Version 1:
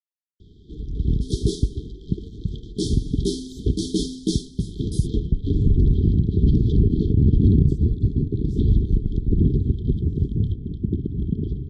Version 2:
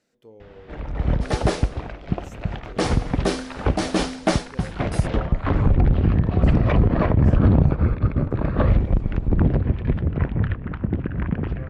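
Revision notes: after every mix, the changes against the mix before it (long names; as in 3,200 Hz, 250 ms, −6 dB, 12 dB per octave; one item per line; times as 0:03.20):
speech: entry −1.25 s
master: remove linear-phase brick-wall band-stop 450–3,100 Hz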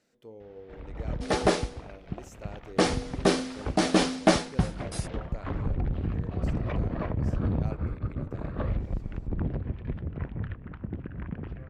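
first sound −12.0 dB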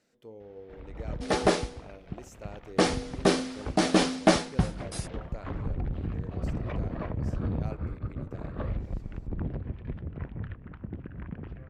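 first sound −3.0 dB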